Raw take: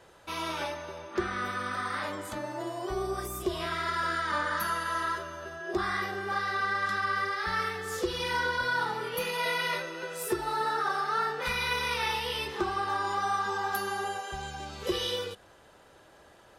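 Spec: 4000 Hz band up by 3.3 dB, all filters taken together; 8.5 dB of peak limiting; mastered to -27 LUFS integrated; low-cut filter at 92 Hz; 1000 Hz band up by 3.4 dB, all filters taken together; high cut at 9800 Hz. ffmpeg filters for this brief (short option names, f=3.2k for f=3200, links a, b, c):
-af "highpass=92,lowpass=9.8k,equalizer=f=1k:t=o:g=4,equalizer=f=4k:t=o:g=4,volume=5dB,alimiter=limit=-18.5dB:level=0:latency=1"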